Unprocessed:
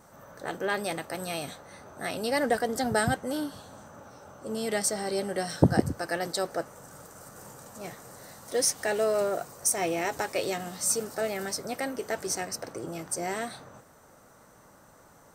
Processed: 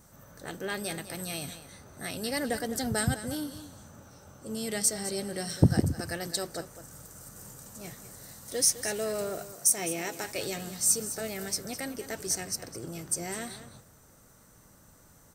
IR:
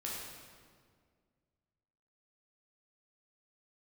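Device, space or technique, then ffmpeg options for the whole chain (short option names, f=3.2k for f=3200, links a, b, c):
smiley-face EQ: -filter_complex "[0:a]lowshelf=f=120:g=8.5,equalizer=f=810:t=o:w=2.2:g=-7.5,highshelf=f=5.4k:g=6,asettb=1/sr,asplit=3[a][b][c];[a]atrim=end=9.534[d];[b]atrim=start=9.53:end=10.24,asetpts=PTS-STARTPTS,afade=t=in:d=0.004:c=qsin,afade=t=out:st=0.706:d=0.004:c=qsin,highpass=f=150:w=0.5412,highpass=f=150:w=1.3066[e];[c]atrim=start=10.236[f];[d][e]acrossfade=d=0.004:c1=hsin:c2=qsin[g];[g][f]acrossfade=d=0.004:c1=qsin:c2=hsin,aecho=1:1:206:0.224,volume=-1.5dB"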